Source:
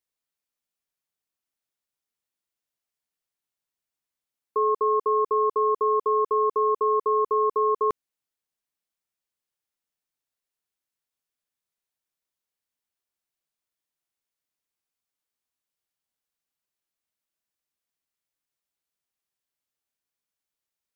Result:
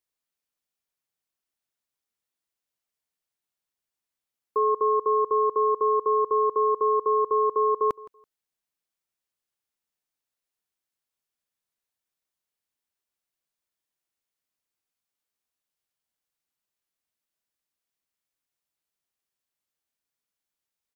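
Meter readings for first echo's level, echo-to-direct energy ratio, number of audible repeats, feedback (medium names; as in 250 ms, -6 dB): -20.5 dB, -20.5 dB, 2, 21%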